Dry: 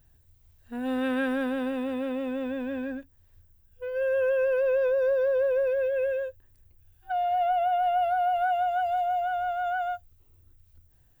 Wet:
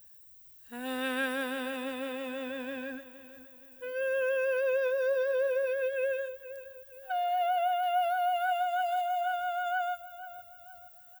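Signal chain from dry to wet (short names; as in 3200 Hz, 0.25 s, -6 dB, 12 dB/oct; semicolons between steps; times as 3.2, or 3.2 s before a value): tilt +3.5 dB/oct; feedback echo 0.469 s, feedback 43%, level -15 dB; gain -2 dB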